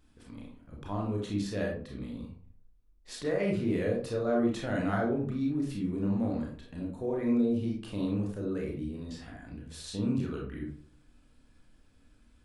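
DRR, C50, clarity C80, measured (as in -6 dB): -1.5 dB, 4.0 dB, 9.5 dB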